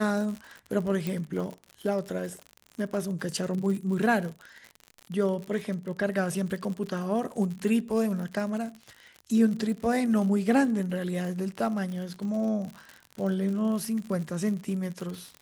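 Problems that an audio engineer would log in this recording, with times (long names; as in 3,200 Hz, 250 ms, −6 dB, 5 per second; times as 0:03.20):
surface crackle 64 per second −34 dBFS
0:01.07: click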